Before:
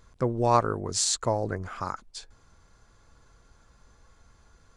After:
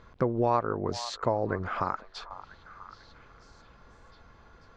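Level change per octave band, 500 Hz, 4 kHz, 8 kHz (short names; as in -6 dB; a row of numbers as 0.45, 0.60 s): -1.0, -7.5, -18.5 dB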